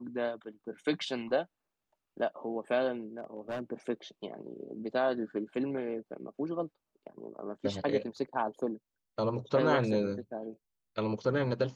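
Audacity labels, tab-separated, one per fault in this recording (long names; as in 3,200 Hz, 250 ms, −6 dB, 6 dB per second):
3.190000	3.620000	clipping −32 dBFS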